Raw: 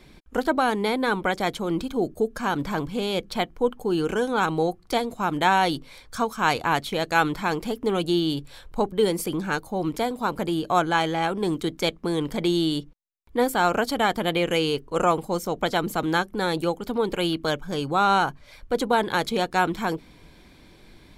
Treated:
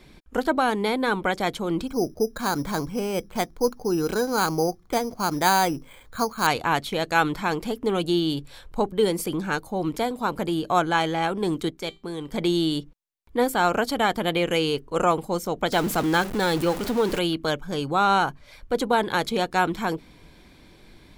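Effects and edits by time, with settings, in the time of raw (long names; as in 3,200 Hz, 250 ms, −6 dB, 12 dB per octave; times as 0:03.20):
0:01.87–0:06.47: bad sample-rate conversion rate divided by 8×, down filtered, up hold
0:11.70–0:12.33: tuned comb filter 390 Hz, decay 0.25 s
0:15.72–0:17.19: converter with a step at zero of −27.5 dBFS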